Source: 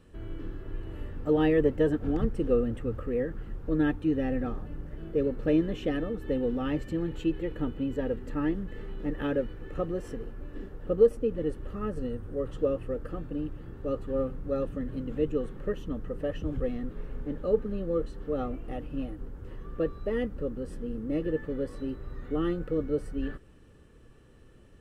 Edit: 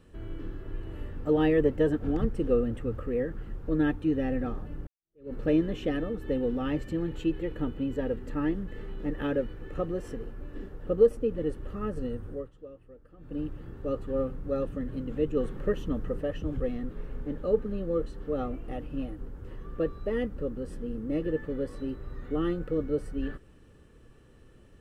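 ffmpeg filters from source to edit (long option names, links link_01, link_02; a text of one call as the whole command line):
ffmpeg -i in.wav -filter_complex "[0:a]asplit=6[link_01][link_02][link_03][link_04][link_05][link_06];[link_01]atrim=end=4.87,asetpts=PTS-STARTPTS,afade=type=out:start_time=4.866:duration=0.004:curve=hsin[link_07];[link_02]atrim=start=4.87:end=12.5,asetpts=PTS-STARTPTS,afade=type=in:duration=0.46:curve=exp,afade=type=out:start_time=7.42:duration=0.21:silence=0.11885[link_08];[link_03]atrim=start=12.5:end=13.18,asetpts=PTS-STARTPTS,volume=-18.5dB[link_09];[link_04]atrim=start=13.18:end=15.372,asetpts=PTS-STARTPTS,afade=type=in:duration=0.21:silence=0.11885[link_10];[link_05]atrim=start=15.368:end=16.202,asetpts=PTS-STARTPTS,volume=3.5dB[link_11];[link_06]atrim=start=16.198[link_12];[link_07][link_08][link_09][link_10]concat=n=4:v=0:a=1[link_13];[link_13][link_11]acrossfade=duration=0.004:curve1=hsin:curve2=hsin[link_14];[link_14][link_12]acrossfade=duration=0.004:curve1=hsin:curve2=hsin" out.wav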